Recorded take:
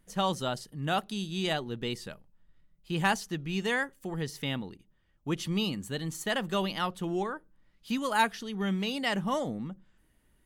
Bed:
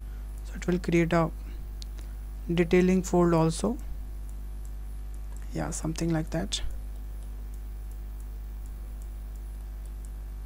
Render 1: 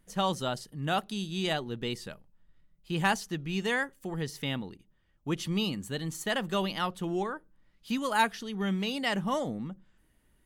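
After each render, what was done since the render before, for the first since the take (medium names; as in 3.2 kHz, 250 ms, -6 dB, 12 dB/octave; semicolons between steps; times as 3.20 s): no audible change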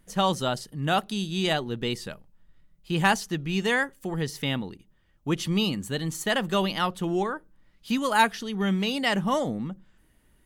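trim +5 dB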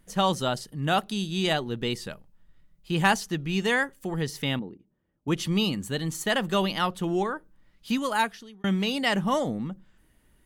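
4.59–5.28 s: band-pass filter 310 Hz, Q 0.84; 7.91–8.64 s: fade out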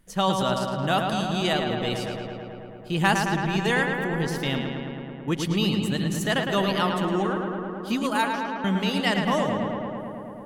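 filtered feedback delay 109 ms, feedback 83%, low-pass 3.7 kHz, level -5 dB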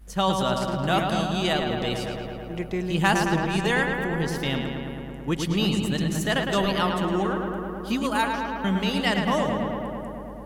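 add bed -7 dB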